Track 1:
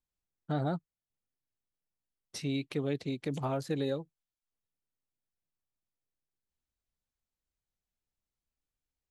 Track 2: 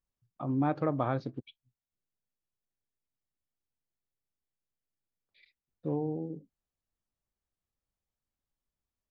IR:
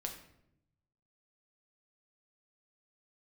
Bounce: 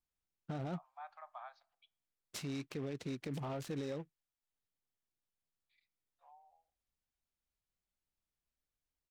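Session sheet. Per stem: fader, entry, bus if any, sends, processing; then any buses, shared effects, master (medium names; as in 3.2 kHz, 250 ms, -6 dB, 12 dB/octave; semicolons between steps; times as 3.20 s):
-2.5 dB, 0.00 s, no send, delay time shaken by noise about 1.6 kHz, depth 0.034 ms
-15.5 dB, 0.35 s, send -16.5 dB, steep high-pass 680 Hz 72 dB/octave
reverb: on, RT60 0.80 s, pre-delay 6 ms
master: peak limiter -32 dBFS, peak gain reduction 9 dB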